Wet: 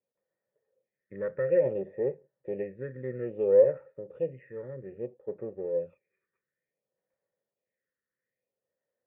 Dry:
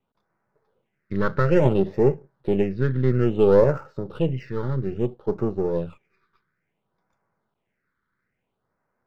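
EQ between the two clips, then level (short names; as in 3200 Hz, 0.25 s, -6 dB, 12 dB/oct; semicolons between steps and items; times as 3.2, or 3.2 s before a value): vocal tract filter e; HPF 66 Hz; 0.0 dB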